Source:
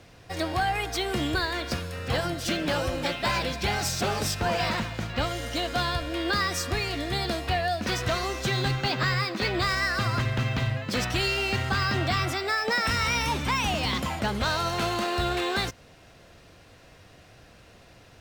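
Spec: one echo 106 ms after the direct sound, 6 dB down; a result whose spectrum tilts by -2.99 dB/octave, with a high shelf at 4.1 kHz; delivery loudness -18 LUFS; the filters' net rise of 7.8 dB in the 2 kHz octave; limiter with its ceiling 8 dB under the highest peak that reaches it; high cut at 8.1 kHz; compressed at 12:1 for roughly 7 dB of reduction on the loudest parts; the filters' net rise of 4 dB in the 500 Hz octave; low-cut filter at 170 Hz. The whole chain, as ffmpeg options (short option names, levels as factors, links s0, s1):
-af "highpass=170,lowpass=8100,equalizer=f=500:t=o:g=5,equalizer=f=2000:t=o:g=8.5,highshelf=f=4100:g=3.5,acompressor=threshold=0.0708:ratio=12,alimiter=limit=0.112:level=0:latency=1,aecho=1:1:106:0.501,volume=2.66"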